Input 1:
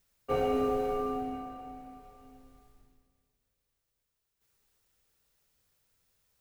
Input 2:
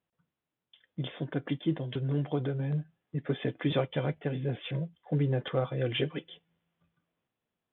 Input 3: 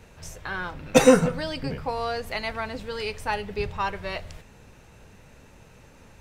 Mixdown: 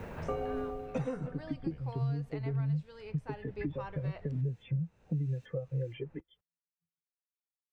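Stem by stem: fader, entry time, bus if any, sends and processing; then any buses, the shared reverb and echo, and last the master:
-1.5 dB, 0.00 s, no send, random-step tremolo, depth 55%; auto duck -17 dB, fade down 0.40 s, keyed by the second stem
+2.0 dB, 0.00 s, no send, bell 2000 Hz +9 dB 0.89 oct; compressor 12:1, threshold -33 dBFS, peak gain reduction 12 dB; spectral expander 2.5:1
-19.5 dB, 0.00 s, no send, LPF 10000 Hz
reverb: off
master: high shelf 2700 Hz -10 dB; three-band squash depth 100%

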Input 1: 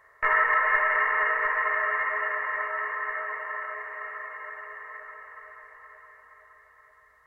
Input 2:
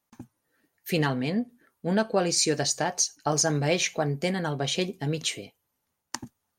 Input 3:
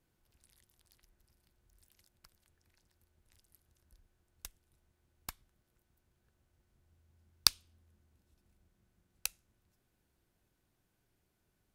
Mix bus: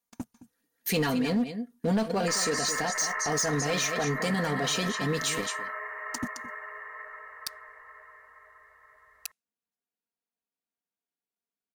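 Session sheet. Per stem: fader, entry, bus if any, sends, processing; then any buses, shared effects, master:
-1.0 dB, 2.05 s, no bus, no send, no echo send, compressor 3:1, threshold -29 dBFS, peak gain reduction 8.5 dB
-6.0 dB, 0.00 s, bus A, no send, echo send -5.5 dB, tone controls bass +1 dB, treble +6 dB; comb 4.2 ms, depth 58%
-12.5 dB, 0.00 s, bus A, no send, no echo send, Bessel high-pass 320 Hz; comb 4.3 ms, depth 88%
bus A: 0.0 dB, sample leveller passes 3; limiter -19 dBFS, peak gain reduction 8.5 dB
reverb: off
echo: echo 0.216 s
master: limiter -20 dBFS, peak gain reduction 8 dB

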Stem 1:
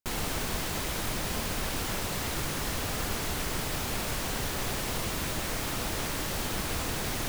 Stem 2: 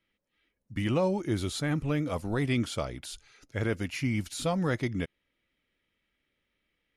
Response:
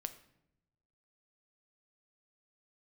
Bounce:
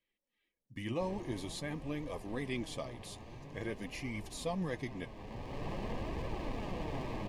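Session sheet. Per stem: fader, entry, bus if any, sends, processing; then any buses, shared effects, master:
+0.5 dB, 0.95 s, no send, LPF 2400 Hz 24 dB/oct; running maximum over 17 samples; auto duck -11 dB, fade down 1.60 s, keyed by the second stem
-4.0 dB, 0.00 s, no send, bell 73 Hz -6 dB 2.1 oct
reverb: off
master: flange 0.48 Hz, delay 1.7 ms, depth 8.2 ms, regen +52%; Butterworth band-stop 1400 Hz, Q 3.8

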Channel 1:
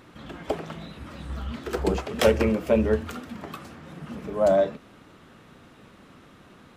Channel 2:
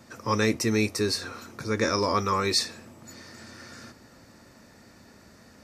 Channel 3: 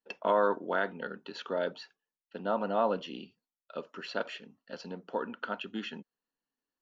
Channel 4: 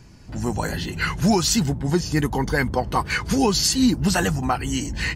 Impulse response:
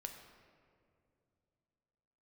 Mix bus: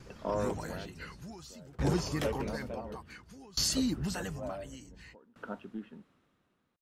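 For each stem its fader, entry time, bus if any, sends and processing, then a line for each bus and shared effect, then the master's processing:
-7.5 dB, 0.00 s, no send, dry
-17.5 dB, 0.00 s, no send, dry
-4.0 dB, 0.00 s, no send, Bessel low-pass 1900 Hz; tilt -3.5 dB/oct
-5.0 dB, 0.00 s, no send, limiter -14 dBFS, peak gain reduction 5.5 dB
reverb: off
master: dB-ramp tremolo decaying 0.56 Hz, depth 27 dB

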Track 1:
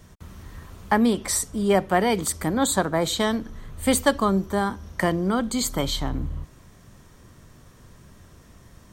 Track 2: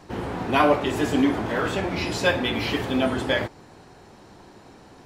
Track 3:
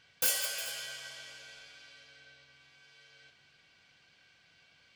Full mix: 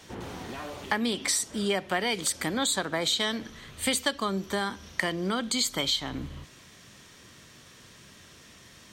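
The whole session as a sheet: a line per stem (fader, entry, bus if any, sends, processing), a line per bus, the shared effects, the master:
-1.5 dB, 0.00 s, no send, weighting filter D
-7.0 dB, 0.00 s, no send, limiter -18 dBFS, peak gain reduction 10.5 dB; auto duck -14 dB, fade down 1.45 s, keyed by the first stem
-19.5 dB, 1.85 s, no send, steep low-pass 11000 Hz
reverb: off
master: compressor 3:1, threshold -26 dBFS, peak gain reduction 10.5 dB

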